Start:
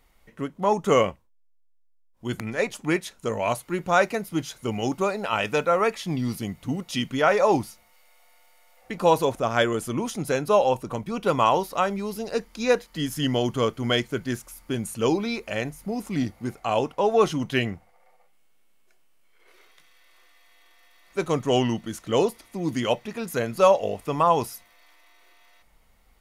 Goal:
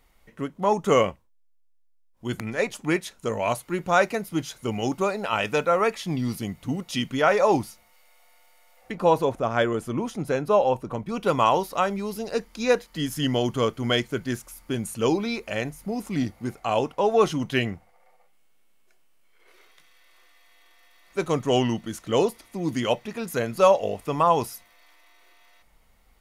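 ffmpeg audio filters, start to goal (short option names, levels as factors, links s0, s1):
-filter_complex "[0:a]asettb=1/sr,asplit=3[s0][s1][s2];[s0]atrim=end=8.924[s3];[s1]atrim=start=8.92:end=11.09,asetpts=PTS-STARTPTS,afade=t=in:d=0.004:c=qsin,afade=t=out:st=2.166:d=0.004:c=qsin,highshelf=f=3000:g=-9.5[s4];[s2]atrim=start=11.086[s5];[s3][s4]acrossfade=d=0.004:c1=hsin:c2=qsin[s6];[s6][s5]acrossfade=d=0.004:c1=qsin:c2=hsin"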